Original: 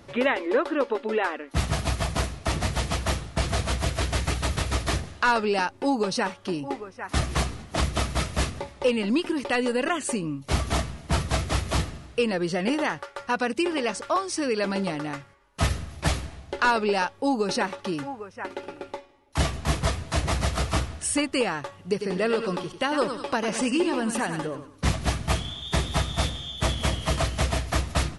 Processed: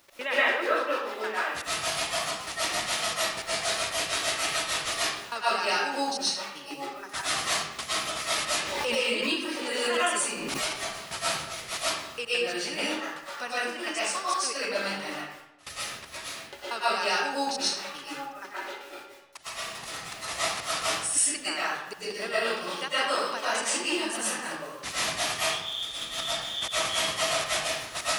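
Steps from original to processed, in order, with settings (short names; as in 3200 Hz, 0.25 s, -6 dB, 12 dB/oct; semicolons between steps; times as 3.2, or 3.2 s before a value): HPF 1200 Hz 6 dB/oct; high shelf 2300 Hz +4 dB; bit-crush 9-bit; step gate "x.xx.xx." 158 bpm -24 dB; reverb RT60 0.85 s, pre-delay 80 ms, DRR -10 dB; 8.57–10.77 backwards sustainer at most 26 dB/s; gain -6.5 dB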